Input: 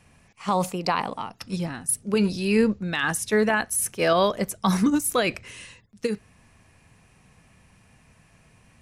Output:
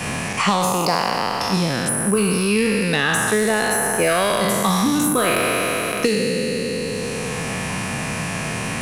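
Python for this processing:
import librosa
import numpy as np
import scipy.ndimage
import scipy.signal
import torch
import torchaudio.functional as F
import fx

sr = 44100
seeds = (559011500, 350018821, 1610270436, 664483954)

p1 = fx.spec_trails(x, sr, decay_s=1.97)
p2 = np.clip(p1, -10.0 ** (-17.0 / 20.0), 10.0 ** (-17.0 / 20.0))
p3 = p1 + F.gain(torch.from_numpy(p2), -3.0).numpy()
p4 = fx.band_squash(p3, sr, depth_pct=100)
y = F.gain(torch.from_numpy(p4), -3.5).numpy()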